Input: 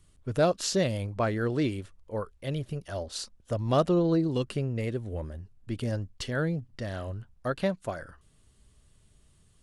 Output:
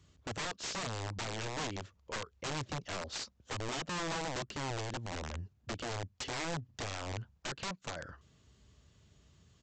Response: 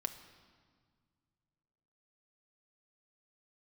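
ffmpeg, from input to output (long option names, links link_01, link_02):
-af "highpass=frequency=57:width=0.5412,highpass=frequency=57:width=1.3066,acompressor=threshold=-36dB:ratio=4,aresample=16000,aeval=exprs='(mod(50.1*val(0)+1,2)-1)/50.1':channel_layout=same,aresample=44100,volume=1dB"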